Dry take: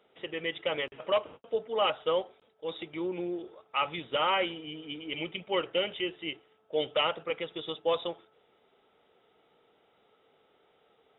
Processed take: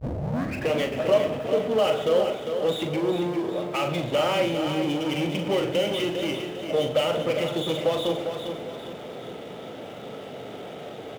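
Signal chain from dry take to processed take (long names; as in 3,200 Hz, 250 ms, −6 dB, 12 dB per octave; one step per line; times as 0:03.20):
turntable start at the beginning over 0.75 s
octave-band graphic EQ 125/250/500/1,000 Hz +11/+8/−7/−6 dB
downward compressor, threshold −36 dBFS, peak gain reduction 12.5 dB
power curve on the samples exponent 0.5
high-pass filter 47 Hz
parametric band 590 Hz +13.5 dB 0.92 octaves
double-tracking delay 41 ms −7 dB
repeating echo 401 ms, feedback 44%, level −7.5 dB
on a send at −13 dB: convolution reverb RT60 0.40 s, pre-delay 92 ms
on the sum: level +2.5 dB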